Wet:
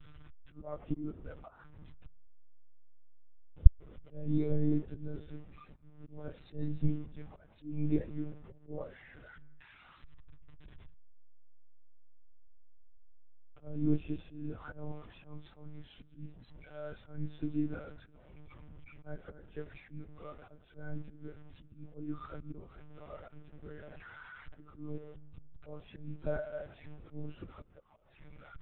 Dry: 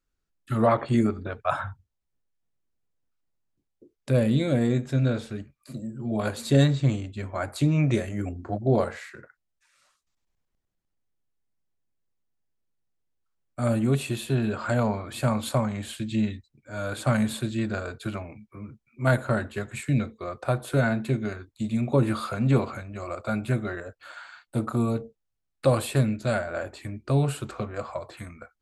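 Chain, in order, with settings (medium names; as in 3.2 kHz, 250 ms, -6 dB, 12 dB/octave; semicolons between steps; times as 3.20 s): one-bit delta coder 32 kbps, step -30 dBFS; dynamic bell 310 Hz, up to +6 dB, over -36 dBFS, Q 1.1; slow attack 305 ms; in parallel at -7 dB: hard clipper -25 dBFS, distortion -7 dB; 23.11–24.60 s: on the sum: word length cut 6-bit, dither none; on a send at -17 dB: reverberation RT60 2.3 s, pre-delay 118 ms; on the sum: monotone LPC vocoder at 8 kHz 150 Hz; spectral contrast expander 1.5:1; trim -5.5 dB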